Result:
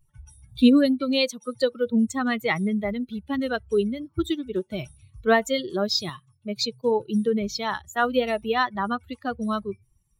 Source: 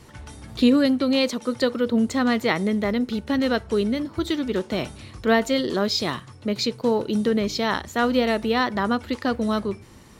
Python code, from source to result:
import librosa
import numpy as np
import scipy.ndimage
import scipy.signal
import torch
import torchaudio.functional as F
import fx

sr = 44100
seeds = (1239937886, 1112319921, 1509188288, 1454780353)

y = fx.bin_expand(x, sr, power=2.0)
y = fx.highpass(y, sr, hz=210.0, slope=6, at=(6.09, 6.61))
y = F.gain(torch.from_numpy(y), 3.0).numpy()